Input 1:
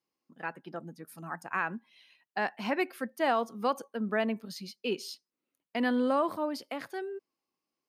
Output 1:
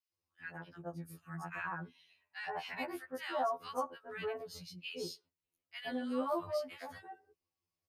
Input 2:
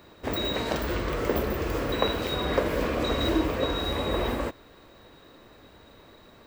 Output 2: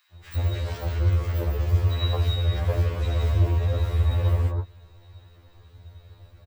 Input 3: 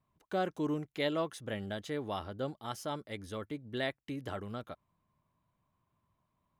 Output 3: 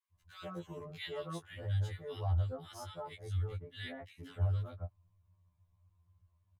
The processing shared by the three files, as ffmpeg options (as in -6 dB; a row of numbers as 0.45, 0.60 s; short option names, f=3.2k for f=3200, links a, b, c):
-filter_complex "[0:a]lowshelf=f=150:t=q:w=3:g=13,acrossover=split=1400[a][b];[a]adelay=120[c];[c][b]amix=inputs=2:normalize=0,afftfilt=real='re*2*eq(mod(b,4),0)':imag='im*2*eq(mod(b,4),0)':win_size=2048:overlap=0.75,volume=-3dB"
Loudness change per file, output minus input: -8.0, +3.0, -1.5 LU